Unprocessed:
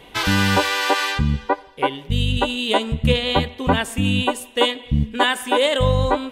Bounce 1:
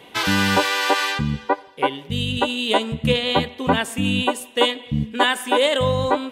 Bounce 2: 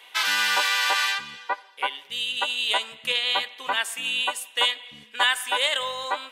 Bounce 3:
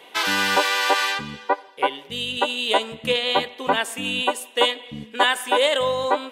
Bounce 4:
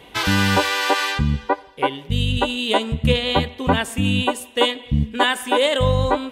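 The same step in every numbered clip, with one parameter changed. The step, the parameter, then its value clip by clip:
high-pass filter, corner frequency: 130, 1,200, 420, 40 Hertz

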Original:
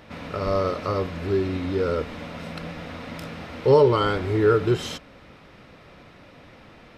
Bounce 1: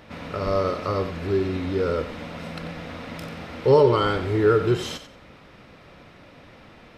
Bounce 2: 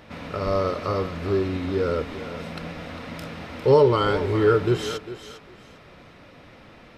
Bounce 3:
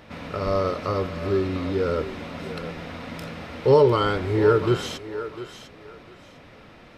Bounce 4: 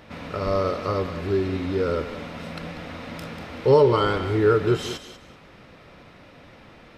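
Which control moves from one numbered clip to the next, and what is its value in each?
feedback echo with a high-pass in the loop, delay time: 91, 402, 701, 191 milliseconds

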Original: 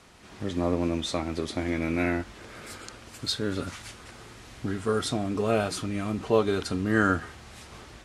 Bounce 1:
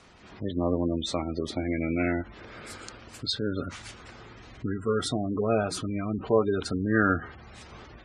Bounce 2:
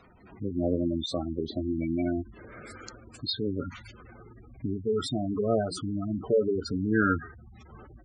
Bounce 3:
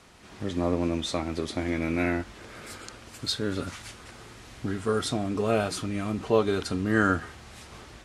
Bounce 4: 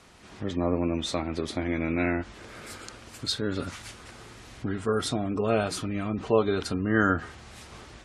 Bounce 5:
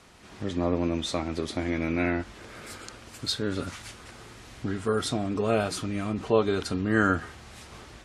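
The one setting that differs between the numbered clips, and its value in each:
gate on every frequency bin, under each frame's peak: −20, −10, −60, −35, −45 decibels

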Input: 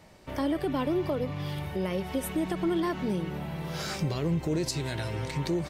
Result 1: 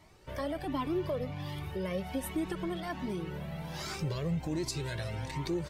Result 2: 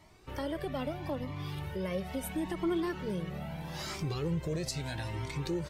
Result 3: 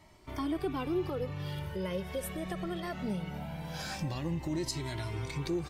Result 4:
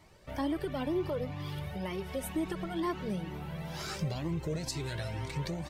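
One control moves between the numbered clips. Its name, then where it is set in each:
flanger whose copies keep moving one way, speed: 1.3, 0.77, 0.21, 2.1 Hertz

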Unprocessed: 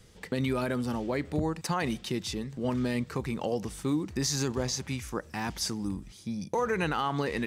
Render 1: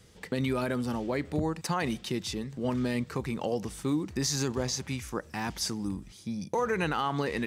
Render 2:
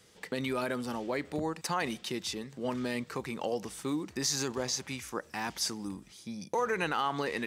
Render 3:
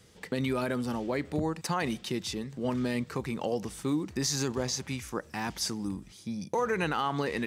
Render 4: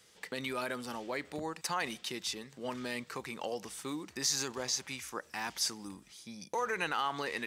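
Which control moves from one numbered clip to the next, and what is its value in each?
high-pass filter, corner frequency: 42, 380, 110, 1,000 Hertz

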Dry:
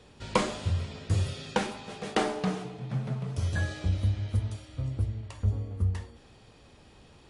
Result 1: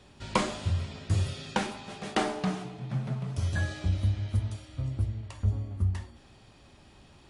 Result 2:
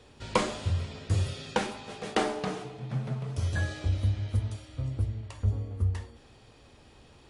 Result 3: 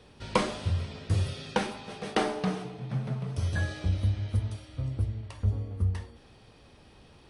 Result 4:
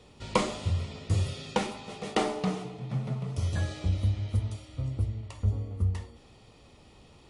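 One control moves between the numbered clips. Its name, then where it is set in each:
notch filter, centre frequency: 470, 180, 7,100, 1,600 Hertz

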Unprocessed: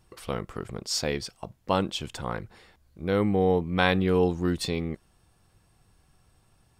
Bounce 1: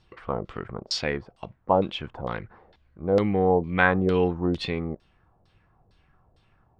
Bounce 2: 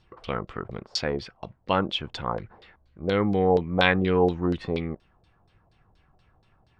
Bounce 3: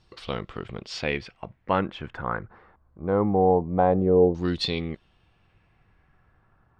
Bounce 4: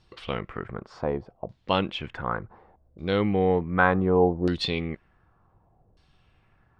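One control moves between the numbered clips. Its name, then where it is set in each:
auto-filter low-pass, speed: 2.2, 4.2, 0.23, 0.67 Hertz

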